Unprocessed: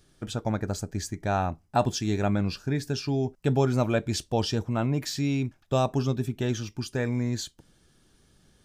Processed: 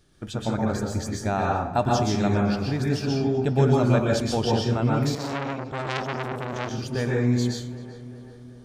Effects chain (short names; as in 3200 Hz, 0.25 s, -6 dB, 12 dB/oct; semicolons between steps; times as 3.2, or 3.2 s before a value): high shelf 6300 Hz -5 dB; on a send: darkening echo 0.387 s, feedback 61%, low-pass 2600 Hz, level -15 dB; on the sum: plate-style reverb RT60 0.52 s, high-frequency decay 0.65×, pre-delay 0.11 s, DRR -2 dB; 5.15–6.71 core saturation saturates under 2900 Hz